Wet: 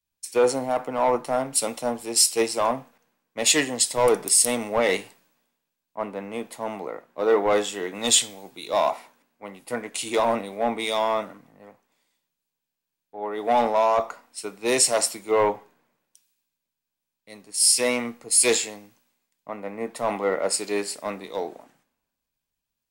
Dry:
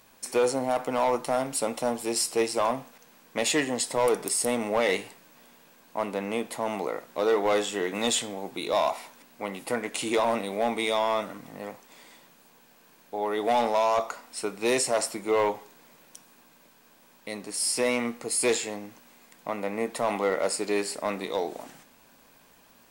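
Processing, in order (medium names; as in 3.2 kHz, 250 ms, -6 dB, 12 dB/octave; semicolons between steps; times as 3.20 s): three bands expanded up and down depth 100%; trim +1 dB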